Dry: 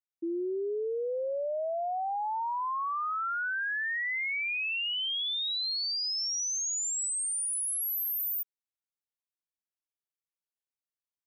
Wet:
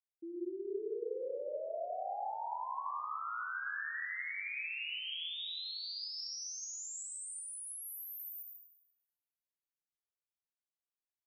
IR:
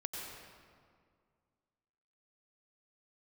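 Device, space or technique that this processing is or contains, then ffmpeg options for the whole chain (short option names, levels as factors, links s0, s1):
swimming-pool hall: -filter_complex "[1:a]atrim=start_sample=2205[s0];[0:a][s0]afir=irnorm=-1:irlink=0,highshelf=f=5800:g=-4.5,volume=0.376"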